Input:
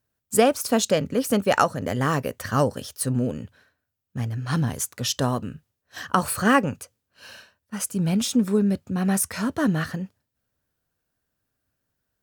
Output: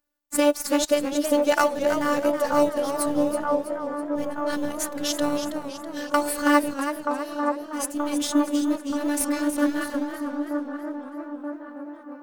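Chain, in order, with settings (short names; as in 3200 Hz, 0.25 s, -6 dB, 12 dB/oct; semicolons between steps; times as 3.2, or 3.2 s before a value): block floating point 7-bit; low shelf 100 Hz -9.5 dB; in parallel at -11 dB: sample-rate reducer 3300 Hz, jitter 0%; on the sum: robotiser 292 Hz; on a send: band-limited delay 0.928 s, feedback 58%, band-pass 630 Hz, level -4 dB; on the sum: warbling echo 0.323 s, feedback 49%, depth 106 cents, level -9 dB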